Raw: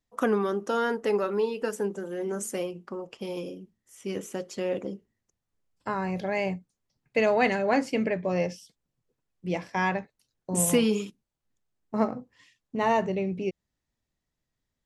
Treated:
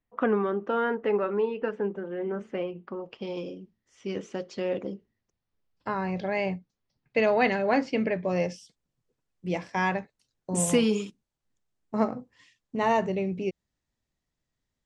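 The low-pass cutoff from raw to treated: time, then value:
low-pass 24 dB/octave
2.57 s 2.8 kHz
3.37 s 5.3 kHz
8.08 s 5.3 kHz
8.48 s 9.1 kHz

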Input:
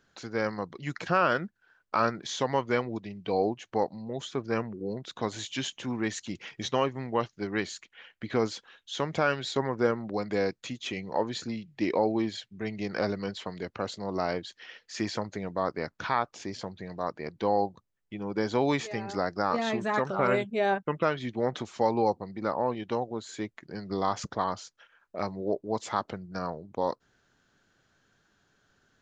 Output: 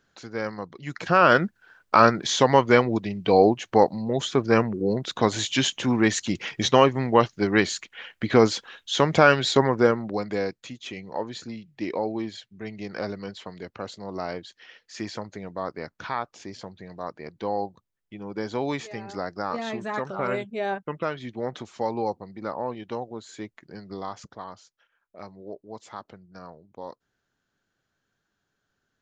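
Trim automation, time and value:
0.86 s -0.5 dB
1.35 s +10 dB
9.53 s +10 dB
10.66 s -2 dB
23.72 s -2 dB
24.32 s -9.5 dB

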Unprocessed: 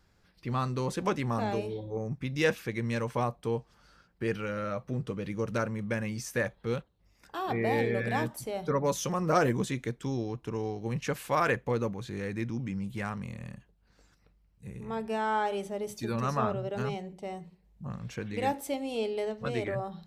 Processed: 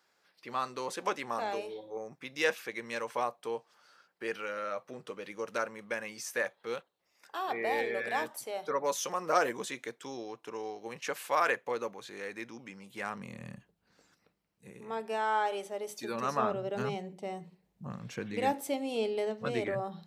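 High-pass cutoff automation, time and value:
12.88 s 510 Hz
13.53 s 130 Hz
15.25 s 440 Hz
15.89 s 440 Hz
16.85 s 160 Hz

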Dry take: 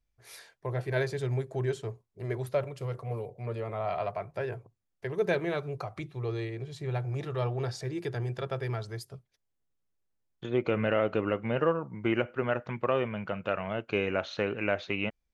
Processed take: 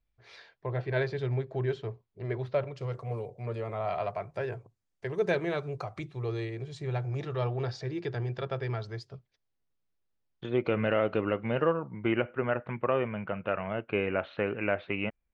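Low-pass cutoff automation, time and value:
low-pass 24 dB/octave
2.55 s 4.4 kHz
3.06 s 8.8 kHz
6.62 s 8.8 kHz
7.68 s 5.3 kHz
11.82 s 5.3 kHz
12.34 s 2.8 kHz

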